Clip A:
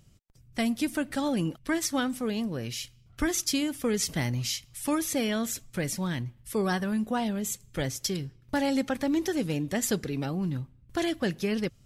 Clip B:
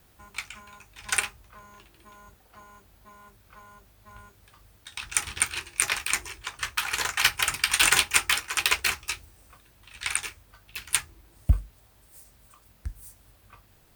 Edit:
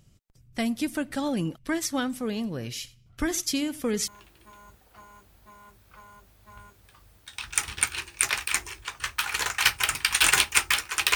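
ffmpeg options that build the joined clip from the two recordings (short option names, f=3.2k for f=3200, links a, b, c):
-filter_complex "[0:a]asettb=1/sr,asplit=3[a][b][c];[a]atrim=end=2.234[d];[b]atrim=start=2.23:end=4.08,asetpts=PTS-STARTPTS,afade=t=in:d=0.004:c=qsin,afade=t=out:st=1.846:d=0.004:c=qsin,aecho=1:1:89:0.1,atrim=end_sample=81585[e];[c]atrim=start=4.076[f];[d][e]acrossfade=d=0.004:c1=hsin:c2=qsin[g];[g][f]acrossfade=d=0.004:c1=qsin:c2=hsin,apad=whole_dur=11.15,atrim=end=11.15,atrim=end=4.082[h];[1:a]atrim=start=1.668:end=8.74[i];[h][i]acrossfade=d=0.004:c1=hsin:c2=hsin"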